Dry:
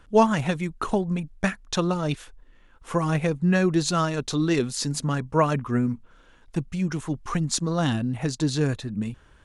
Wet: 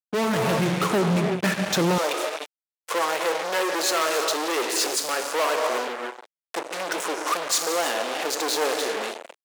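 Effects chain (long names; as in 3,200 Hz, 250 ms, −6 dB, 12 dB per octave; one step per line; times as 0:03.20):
parametric band 460 Hz +5.5 dB 1.1 octaves
reverb whose tail is shaped and stops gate 370 ms flat, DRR 6.5 dB
fuzz pedal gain 34 dB, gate −35 dBFS
high-pass filter 110 Hz 24 dB per octave, from 0:01.98 440 Hz
automatic gain control gain up to 6 dB
level −9 dB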